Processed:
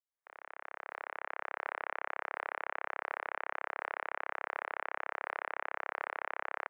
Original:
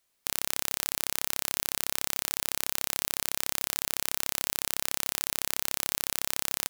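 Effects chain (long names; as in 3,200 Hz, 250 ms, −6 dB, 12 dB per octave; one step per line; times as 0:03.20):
fade in at the beginning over 1.69 s
single-sideband voice off tune −51 Hz 580–2,000 Hz
level +4 dB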